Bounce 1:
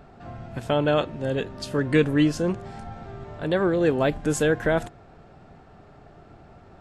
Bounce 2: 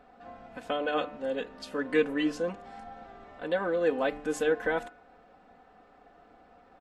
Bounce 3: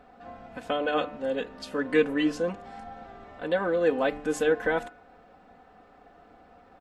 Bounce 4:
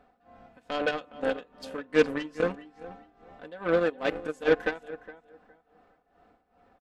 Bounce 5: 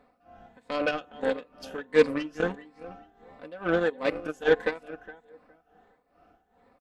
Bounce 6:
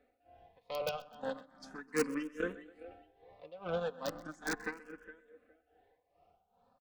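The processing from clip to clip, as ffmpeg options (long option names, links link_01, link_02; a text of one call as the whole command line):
ffmpeg -i in.wav -af "bass=frequency=250:gain=-13,treble=frequency=4000:gain=-7,aecho=1:1:4:0.78,bandreject=frequency=147.5:width_type=h:width=4,bandreject=frequency=295:width_type=h:width=4,bandreject=frequency=442.5:width_type=h:width=4,bandreject=frequency=590:width_type=h:width=4,bandreject=frequency=737.5:width_type=h:width=4,bandreject=frequency=885:width_type=h:width=4,bandreject=frequency=1032.5:width_type=h:width=4,bandreject=frequency=1180:width_type=h:width=4,bandreject=frequency=1327.5:width_type=h:width=4,bandreject=frequency=1475:width_type=h:width=4,bandreject=frequency=1622.5:width_type=h:width=4,bandreject=frequency=1770:width_type=h:width=4,bandreject=frequency=1917.5:width_type=h:width=4,bandreject=frequency=2065:width_type=h:width=4,bandreject=frequency=2212.5:width_type=h:width=4,bandreject=frequency=2360:width_type=h:width=4,bandreject=frequency=2507.5:width_type=h:width=4,bandreject=frequency=2655:width_type=h:width=4,bandreject=frequency=2802.5:width_type=h:width=4,volume=-6dB" out.wav
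ffmpeg -i in.wav -af "equalizer=frequency=95:width_type=o:width=1.8:gain=3.5,volume=2.5dB" out.wav
ffmpeg -i in.wav -filter_complex "[0:a]asplit=2[link_01][link_02];[link_02]adelay=414,lowpass=frequency=3600:poles=1,volume=-10dB,asplit=2[link_03][link_04];[link_04]adelay=414,lowpass=frequency=3600:poles=1,volume=0.26,asplit=2[link_05][link_06];[link_06]adelay=414,lowpass=frequency=3600:poles=1,volume=0.26[link_07];[link_01][link_03][link_05][link_07]amix=inputs=4:normalize=0,tremolo=f=2.4:d=0.8,aeval=exprs='0.211*(cos(1*acos(clip(val(0)/0.211,-1,1)))-cos(1*PI/2))+0.0211*(cos(7*acos(clip(val(0)/0.211,-1,1)))-cos(7*PI/2))':channel_layout=same,volume=4dB" out.wav
ffmpeg -i in.wav -af "afftfilt=real='re*pow(10,7/40*sin(2*PI*(0.98*log(max(b,1)*sr/1024/100)/log(2)-(1.5)*(pts-256)/sr)))':imag='im*pow(10,7/40*sin(2*PI*(0.98*log(max(b,1)*sr/1024/100)/log(2)-(1.5)*(pts-256)/sr)))':win_size=1024:overlap=0.75" out.wav
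ffmpeg -i in.wav -filter_complex "[0:a]acrossover=split=600[link_01][link_02];[link_02]aeval=exprs='(mod(8.41*val(0)+1,2)-1)/8.41':channel_layout=same[link_03];[link_01][link_03]amix=inputs=2:normalize=0,aecho=1:1:128|256|384|512:0.1|0.053|0.0281|0.0149,asplit=2[link_04][link_05];[link_05]afreqshift=0.36[link_06];[link_04][link_06]amix=inputs=2:normalize=1,volume=-6.5dB" out.wav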